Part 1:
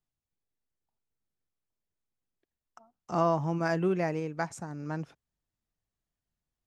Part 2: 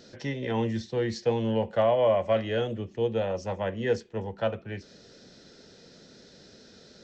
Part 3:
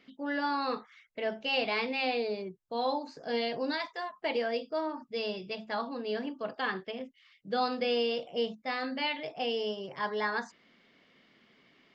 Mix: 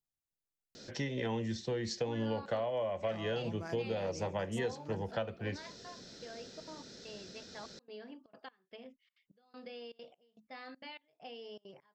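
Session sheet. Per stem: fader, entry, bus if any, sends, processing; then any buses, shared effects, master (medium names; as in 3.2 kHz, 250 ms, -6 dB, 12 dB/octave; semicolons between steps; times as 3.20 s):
-9.0 dB, 0.00 s, bus A, no send, compression, threshold -30 dBFS, peak gain reduction 9.5 dB
-1.0 dB, 0.75 s, bus A, no send, none
-11.5 dB, 1.85 s, no bus, no send, compression 6:1, threshold -33 dBFS, peak gain reduction 8 dB; trance gate "...xxxxx.xx" 199 bpm -24 dB
bus A: 0.0 dB, treble shelf 4.9 kHz +7.5 dB; compression 8:1, threshold -32 dBFS, peak gain reduction 12.5 dB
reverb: none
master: none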